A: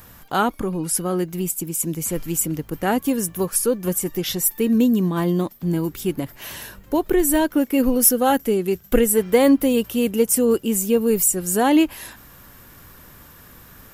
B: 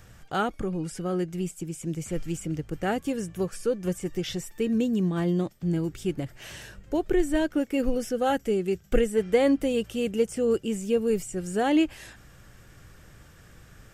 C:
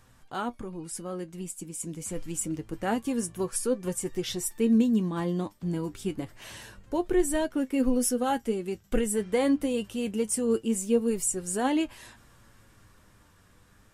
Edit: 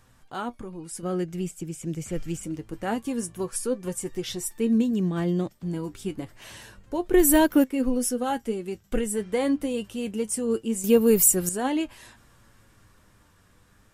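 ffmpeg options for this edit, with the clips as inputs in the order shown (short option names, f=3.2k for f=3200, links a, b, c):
-filter_complex "[1:a]asplit=2[a][b];[0:a]asplit=2[c][d];[2:a]asplit=5[e][f][g][h][i];[e]atrim=end=1.032[j];[a]atrim=start=1.028:end=2.432[k];[f]atrim=start=2.428:end=4.912[l];[b]atrim=start=4.908:end=5.552[m];[g]atrim=start=5.548:end=7.142[n];[c]atrim=start=7.138:end=7.642[o];[h]atrim=start=7.638:end=10.842[p];[d]atrim=start=10.838:end=11.492[q];[i]atrim=start=11.488[r];[j][k]acrossfade=d=0.004:c1=hsin:c2=hsin[s];[s][l]acrossfade=d=0.004:c1=hsin:c2=hsin[t];[t][m]acrossfade=d=0.004:c1=hsin:c2=hsin[u];[u][n]acrossfade=d=0.004:c1=hsin:c2=hsin[v];[v][o]acrossfade=d=0.004:c1=hsin:c2=hsin[w];[w][p]acrossfade=d=0.004:c1=hsin:c2=hsin[x];[x][q]acrossfade=d=0.004:c1=hsin:c2=hsin[y];[y][r]acrossfade=d=0.004:c1=hsin:c2=hsin"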